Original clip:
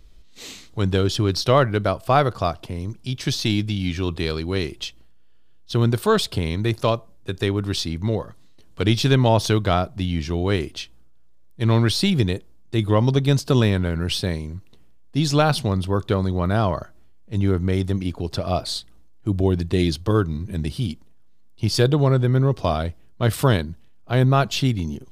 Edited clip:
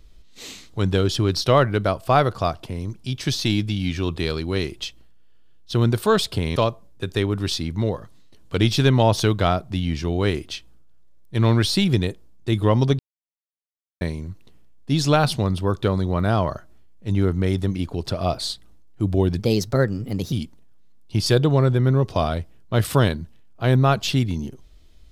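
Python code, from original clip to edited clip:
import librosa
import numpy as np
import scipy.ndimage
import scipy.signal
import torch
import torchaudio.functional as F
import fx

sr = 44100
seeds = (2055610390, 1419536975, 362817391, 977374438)

y = fx.edit(x, sr, fx.cut(start_s=6.56, length_s=0.26),
    fx.silence(start_s=13.25, length_s=1.02),
    fx.speed_span(start_s=19.65, length_s=1.16, speed=1.24), tone=tone)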